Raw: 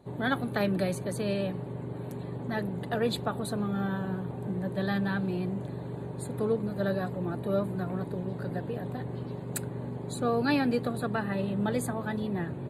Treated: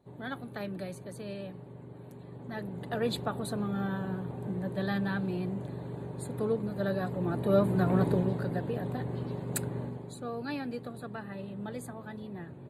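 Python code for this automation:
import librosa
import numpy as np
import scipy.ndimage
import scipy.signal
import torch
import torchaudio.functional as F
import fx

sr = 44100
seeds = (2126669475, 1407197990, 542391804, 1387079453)

y = fx.gain(x, sr, db=fx.line((2.22, -10.0), (3.08, -2.0), (6.9, -2.0), (8.09, 8.5), (8.49, 1.0), (9.79, 1.0), (10.2, -10.0)))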